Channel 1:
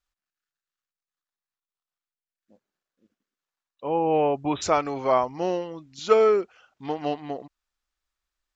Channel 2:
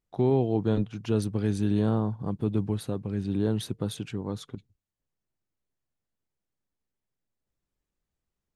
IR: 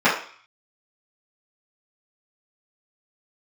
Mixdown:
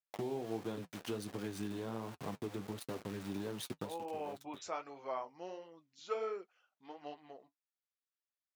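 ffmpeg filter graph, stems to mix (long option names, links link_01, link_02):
-filter_complex "[0:a]volume=-13.5dB,asplit=2[link_01][link_02];[1:a]aeval=exprs='val(0)*gte(abs(val(0)),0.015)':channel_layout=same,acompressor=threshold=-28dB:ratio=10,volume=2.5dB[link_03];[link_02]apad=whole_len=377382[link_04];[link_03][link_04]sidechaincompress=threshold=-45dB:ratio=3:attack=5.4:release=550[link_05];[link_01][link_05]amix=inputs=2:normalize=0,highpass=frequency=470:poles=1,flanger=delay=5.5:depth=7.1:regen=-45:speed=1.4:shape=triangular"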